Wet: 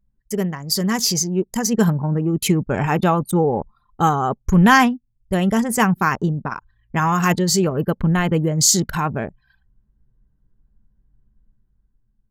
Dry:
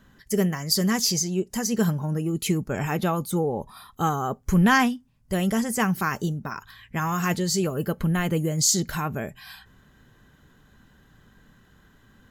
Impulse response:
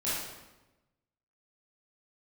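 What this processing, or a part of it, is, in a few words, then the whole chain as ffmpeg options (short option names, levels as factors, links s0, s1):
voice memo with heavy noise removal: -af "anlmdn=25.1,dynaudnorm=f=290:g=7:m=2.37,equalizer=f=910:t=o:w=0.45:g=4"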